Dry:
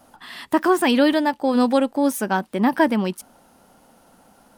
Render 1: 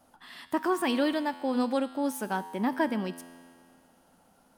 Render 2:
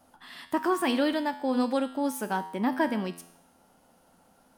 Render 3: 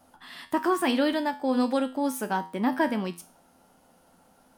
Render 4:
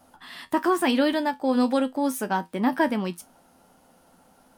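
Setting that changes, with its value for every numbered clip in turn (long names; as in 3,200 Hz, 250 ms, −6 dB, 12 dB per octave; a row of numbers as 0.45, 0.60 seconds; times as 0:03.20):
tuned comb filter, decay: 2.2, 0.8, 0.38, 0.16 seconds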